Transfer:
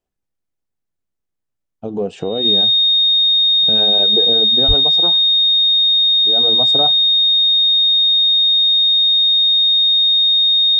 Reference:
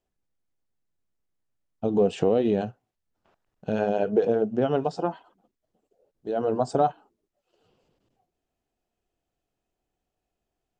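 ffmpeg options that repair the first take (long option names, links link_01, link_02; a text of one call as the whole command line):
ffmpeg -i in.wav -filter_complex "[0:a]bandreject=frequency=3700:width=30,asplit=3[link_01][link_02][link_03];[link_01]afade=type=out:start_time=4.67:duration=0.02[link_04];[link_02]highpass=frequency=140:width=0.5412,highpass=frequency=140:width=1.3066,afade=type=in:start_time=4.67:duration=0.02,afade=type=out:start_time=4.79:duration=0.02[link_05];[link_03]afade=type=in:start_time=4.79:duration=0.02[link_06];[link_04][link_05][link_06]amix=inputs=3:normalize=0" out.wav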